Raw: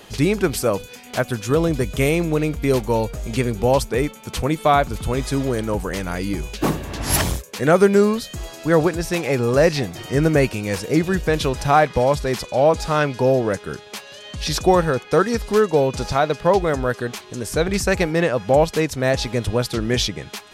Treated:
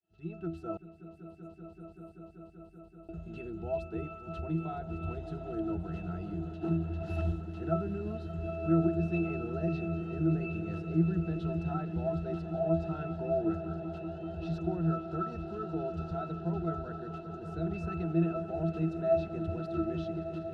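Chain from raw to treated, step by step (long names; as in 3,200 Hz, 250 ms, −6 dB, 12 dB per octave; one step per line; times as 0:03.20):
fade in at the beginning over 0.95 s
parametric band 3,900 Hz +8.5 dB 0.28 octaves
brickwall limiter −11.5 dBFS, peak gain reduction 8.5 dB
low-shelf EQ 140 Hz −5 dB
resonances in every octave E, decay 0.34 s
0:00.77–0:03.09: inverse Chebyshev band-stop filter 120–3,100 Hz, stop band 60 dB
echo that builds up and dies away 192 ms, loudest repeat 5, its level −15 dB
level +4 dB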